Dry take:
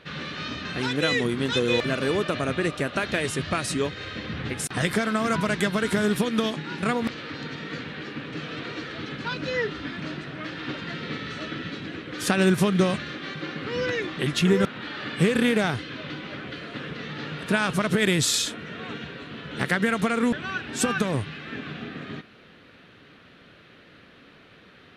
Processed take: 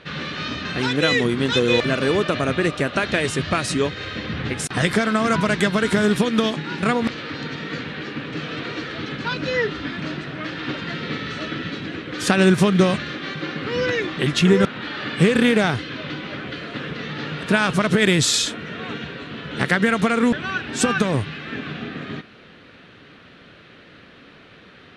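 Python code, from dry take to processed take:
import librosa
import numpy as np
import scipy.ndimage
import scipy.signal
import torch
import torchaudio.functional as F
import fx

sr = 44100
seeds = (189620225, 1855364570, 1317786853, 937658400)

y = scipy.signal.sosfilt(scipy.signal.butter(2, 8800.0, 'lowpass', fs=sr, output='sos'), x)
y = y * 10.0 ** (5.0 / 20.0)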